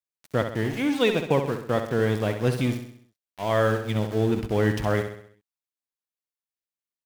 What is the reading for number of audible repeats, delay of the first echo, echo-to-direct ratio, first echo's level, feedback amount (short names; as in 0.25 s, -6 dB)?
5, 65 ms, -7.0 dB, -8.0 dB, 49%